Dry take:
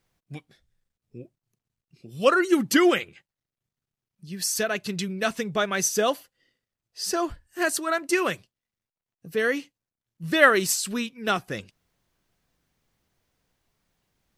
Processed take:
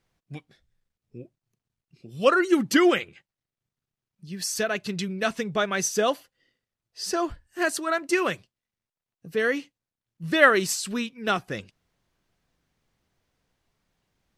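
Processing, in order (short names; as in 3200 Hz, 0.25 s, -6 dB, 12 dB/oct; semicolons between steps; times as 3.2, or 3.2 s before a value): high shelf 9900 Hz -10 dB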